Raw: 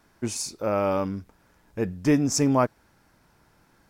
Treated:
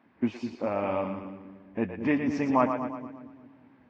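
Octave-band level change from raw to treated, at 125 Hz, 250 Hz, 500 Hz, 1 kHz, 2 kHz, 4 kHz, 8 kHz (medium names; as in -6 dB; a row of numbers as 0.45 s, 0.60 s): -9.5 dB, -2.5 dB, -3.5 dB, -0.5 dB, 0.0 dB, under -10 dB, under -25 dB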